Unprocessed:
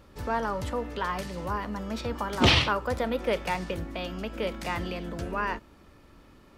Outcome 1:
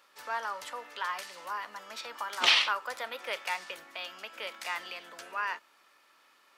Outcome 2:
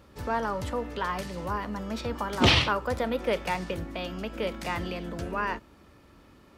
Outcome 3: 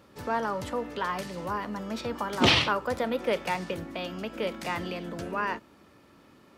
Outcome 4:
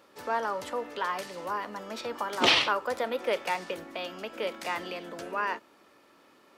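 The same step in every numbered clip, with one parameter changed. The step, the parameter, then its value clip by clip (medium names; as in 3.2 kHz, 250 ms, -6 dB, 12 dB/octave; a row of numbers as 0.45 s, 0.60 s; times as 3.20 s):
high-pass, cutoff frequency: 1.1 kHz, 47 Hz, 130 Hz, 380 Hz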